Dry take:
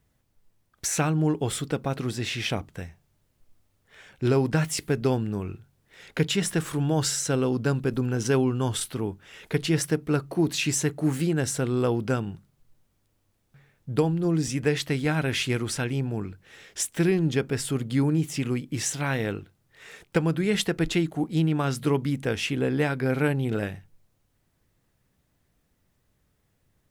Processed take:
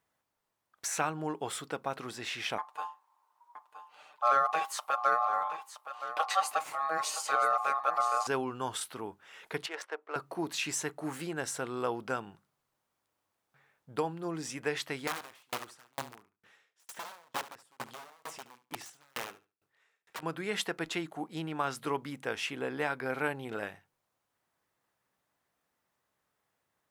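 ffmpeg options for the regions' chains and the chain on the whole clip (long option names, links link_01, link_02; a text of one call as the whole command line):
ffmpeg -i in.wav -filter_complex "[0:a]asettb=1/sr,asplit=3[link_01][link_02][link_03];[link_01]atrim=end=2.584[link_04];[link_02]atrim=start=2.58:end=8.27,asetpts=PTS-STARTPTS,afade=type=in:duration=0.004:curve=qsin,afade=type=out:start_time=5.686:duration=0.004:curve=qsin,aeval=exprs='val(0)*sin(2*PI*960*n/s)':channel_layout=same,aecho=1:1:6.7:0.6,atrim=end_sample=250929,aecho=1:1:970:0.251,atrim=end_sample=250929[link_05];[link_03]atrim=start=8.266[link_06];[link_04][link_05]acrossfade=duration=0.004:curve1=hsin:curve2=qsin[link_07];[link_07][link_06]acrossfade=duration=0.004:curve1=qsin:curve2=hsin,asettb=1/sr,asplit=3[link_08][link_09][link_10];[link_08]atrim=end=9.664[link_11];[link_09]atrim=start=9.66:end=10.16,asetpts=PTS-STARTPTS,afade=type=in:duration=0.004:curve=qsin,afade=type=out:start_time=0.496:duration=0.004:curve=qsin,highpass=frequency=480:width=0.5412,highpass=frequency=480:width=1.3066,adynamicsmooth=sensitivity=2.5:basefreq=1800[link_12];[link_10]atrim=start=10.156[link_13];[link_11][link_12]acrossfade=duration=0.004:curve1=hsin:curve2=qsin[link_14];[link_14][link_13]acrossfade=duration=0.004:curve1=qsin:curve2=hsin,asettb=1/sr,asplit=3[link_15][link_16][link_17];[link_15]atrim=end=15.074[link_18];[link_16]atrim=start=15.07:end=20.23,asetpts=PTS-STARTPTS,afade=type=in:duration=0.004:curve=qsin,afade=type=out:start_time=5.156:duration=0.004:curve=qsin,aeval=exprs='(mod(10.6*val(0)+1,2)-1)/10.6':channel_layout=same,aecho=1:1:72|144|216|288:0.335|0.117|0.041|0.0144,atrim=end_sample=227556,aeval=exprs='val(0)*pow(10,-39*if(lt(mod(2.2*n/s,1),2*abs(2.2)/1000),1-mod(2.2*n/s,1)/(2*abs(2.2)/1000),(mod(2.2*n/s,1)-2*abs(2.2)/1000)/(1-2*abs(2.2)/1000))/20)':channel_layout=same[link_19];[link_17]atrim=start=20.226[link_20];[link_18][link_19]acrossfade=duration=0.004:curve1=hsin:curve2=qsin[link_21];[link_21][link_20]acrossfade=duration=0.004:curve1=qsin:curve2=hsin,highpass=frequency=540:poles=1,equalizer=frequency=1000:width=0.87:gain=8.5,volume=-7.5dB" out.wav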